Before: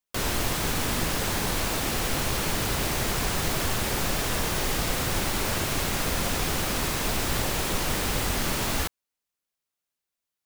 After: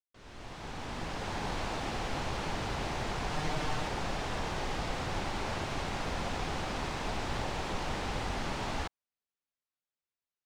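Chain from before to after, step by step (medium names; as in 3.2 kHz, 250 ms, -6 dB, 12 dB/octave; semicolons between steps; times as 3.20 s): fade-in on the opening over 1.51 s; distance through air 110 m; 3.31–3.88 s: comb 6.6 ms, depth 63%; dynamic bell 820 Hz, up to +6 dB, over -50 dBFS, Q 2.3; trim -7.5 dB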